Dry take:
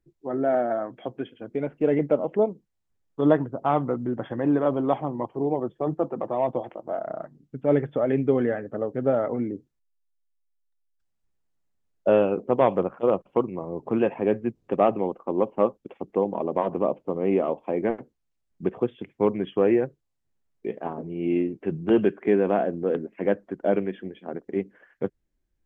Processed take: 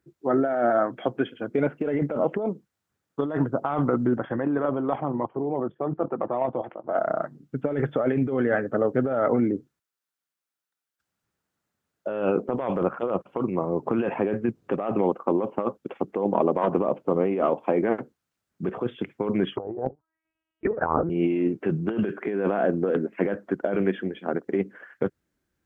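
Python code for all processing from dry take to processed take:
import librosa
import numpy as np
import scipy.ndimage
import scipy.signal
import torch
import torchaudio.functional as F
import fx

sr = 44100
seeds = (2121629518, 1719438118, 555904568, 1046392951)

y = fx.chain(x, sr, fx.lowpass(hz=3100.0, slope=12),
    fx.level_steps(step_db=11), at=(4.18, 6.95))
y = fx.chain(y, sr, fx.tilt_shelf(db=5.0, hz=1300.0),
    fx.lpc_vocoder(seeds[0], excitation='pitch_kept', order=10),
    fx.envelope_lowpass(base_hz=780.0, top_hz=2900.0, q=7.6, full_db=-20.0, direction='down'), at=(19.57, 21.1))
y = scipy.signal.sosfilt(scipy.signal.butter(2, 100.0, 'highpass', fs=sr, output='sos'), y)
y = fx.peak_eq(y, sr, hz=1400.0, db=7.0, octaves=0.56)
y = fx.over_compress(y, sr, threshold_db=-26.0, ratio=-1.0)
y = y * librosa.db_to_amplitude(2.5)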